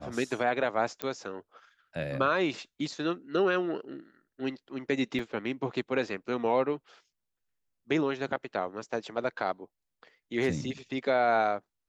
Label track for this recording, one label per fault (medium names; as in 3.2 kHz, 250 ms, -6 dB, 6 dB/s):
1.020000	1.020000	pop -15 dBFS
5.190000	5.190000	dropout 2.3 ms